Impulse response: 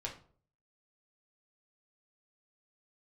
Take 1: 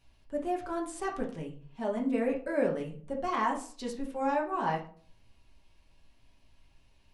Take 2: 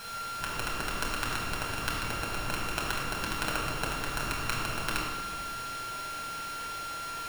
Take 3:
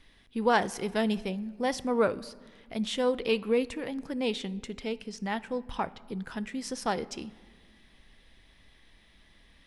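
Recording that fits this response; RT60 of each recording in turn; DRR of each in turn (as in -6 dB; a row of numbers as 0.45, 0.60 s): 1; 0.50 s, 1.4 s, not exponential; -2.0, -4.0, 15.5 dB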